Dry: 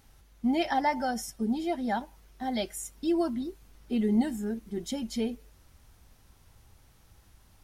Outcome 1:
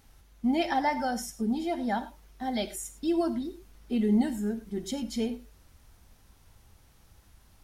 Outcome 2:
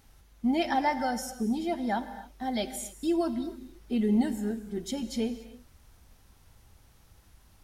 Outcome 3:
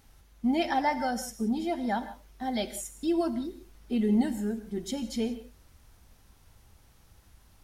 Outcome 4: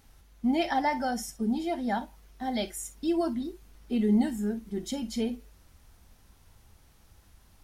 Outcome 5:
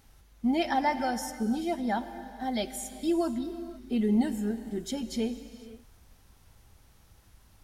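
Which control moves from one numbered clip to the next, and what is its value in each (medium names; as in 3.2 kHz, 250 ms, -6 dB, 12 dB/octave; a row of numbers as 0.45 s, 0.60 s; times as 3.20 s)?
gated-style reverb, gate: 130 ms, 310 ms, 200 ms, 80 ms, 530 ms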